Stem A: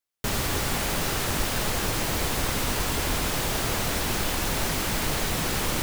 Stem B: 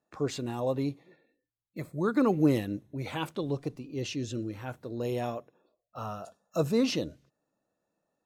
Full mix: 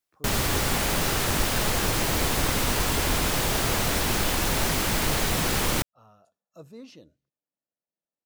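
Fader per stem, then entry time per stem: +2.0, −18.5 decibels; 0.00, 0.00 seconds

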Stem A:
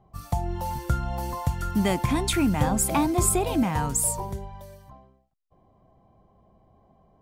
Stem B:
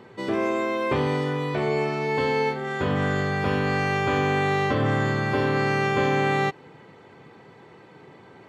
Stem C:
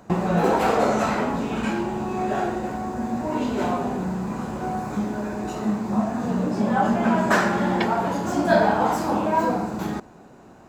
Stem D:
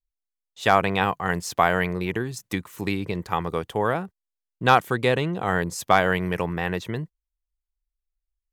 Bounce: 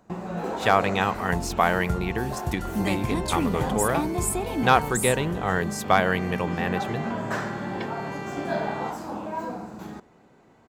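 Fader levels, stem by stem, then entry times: −4.5, −13.0, −10.5, −1.5 decibels; 1.00, 2.40, 0.00, 0.00 seconds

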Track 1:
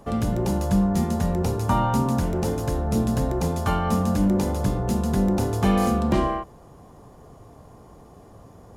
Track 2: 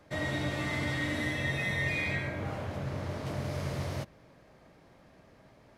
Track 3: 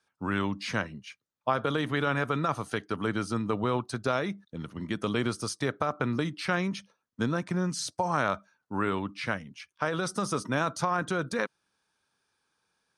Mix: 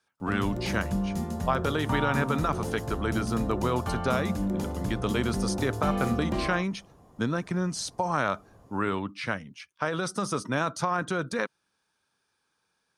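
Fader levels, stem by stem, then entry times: −8.5 dB, muted, +0.5 dB; 0.20 s, muted, 0.00 s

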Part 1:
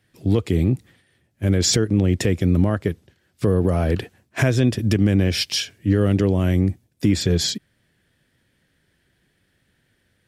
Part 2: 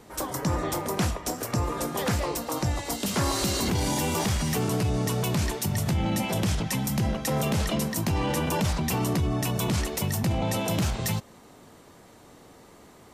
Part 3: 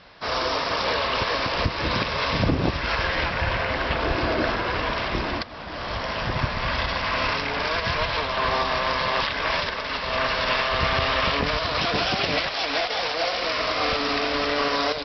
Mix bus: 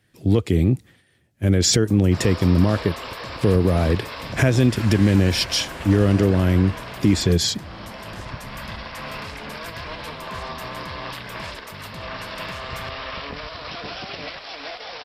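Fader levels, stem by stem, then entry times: +1.0, −14.0, −9.5 decibels; 0.00, 1.70, 1.90 seconds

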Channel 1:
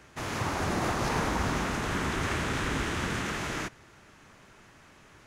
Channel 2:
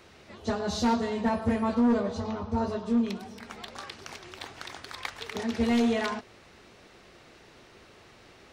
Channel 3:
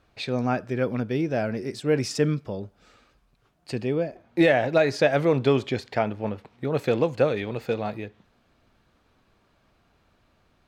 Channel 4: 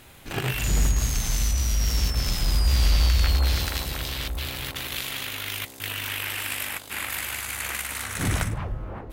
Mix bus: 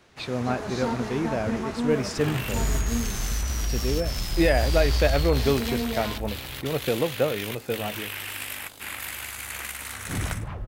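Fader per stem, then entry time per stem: −8.0, −5.0, −2.5, −4.0 decibels; 0.00, 0.00, 0.00, 1.90 seconds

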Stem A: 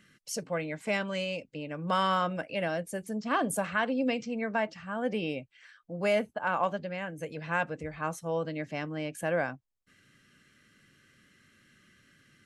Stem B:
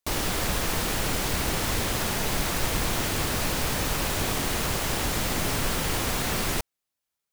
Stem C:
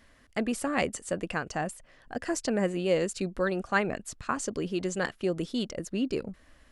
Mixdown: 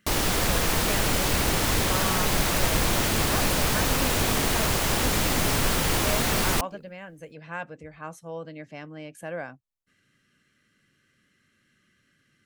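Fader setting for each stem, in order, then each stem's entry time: −5.0, +3.0, −17.0 decibels; 0.00, 0.00, 0.60 seconds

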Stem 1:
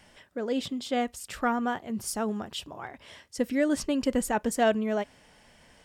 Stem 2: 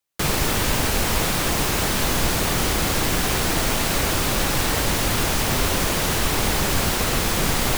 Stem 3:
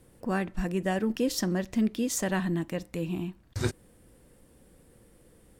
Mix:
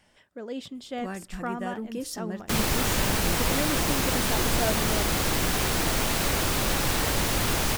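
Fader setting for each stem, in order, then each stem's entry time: −6.0, −4.0, −7.0 decibels; 0.00, 2.30, 0.75 seconds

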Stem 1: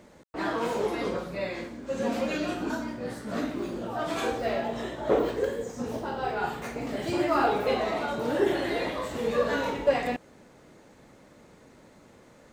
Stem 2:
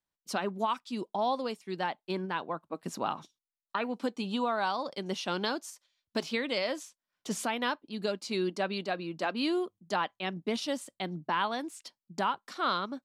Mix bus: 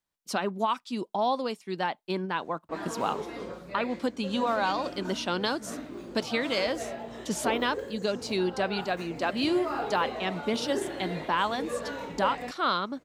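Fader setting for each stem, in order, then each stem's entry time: −8.0, +3.0 decibels; 2.35, 0.00 seconds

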